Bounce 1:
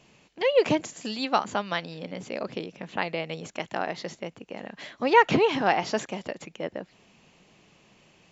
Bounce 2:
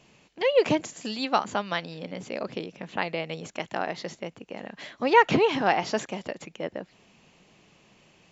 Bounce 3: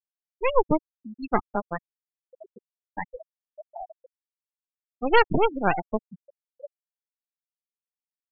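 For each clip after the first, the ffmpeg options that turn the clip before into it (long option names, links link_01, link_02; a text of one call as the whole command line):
ffmpeg -i in.wav -af anull out.wav
ffmpeg -i in.wav -af "aeval=exprs='0.631*(cos(1*acos(clip(val(0)/0.631,-1,1)))-cos(1*PI/2))+0.0631*(cos(3*acos(clip(val(0)/0.631,-1,1)))-cos(3*PI/2))+0.141*(cos(6*acos(clip(val(0)/0.631,-1,1)))-cos(6*PI/2))':channel_layout=same,afftfilt=real='re*gte(hypot(re,im),0.2)':imag='im*gte(hypot(re,im),0.2)':win_size=1024:overlap=0.75" out.wav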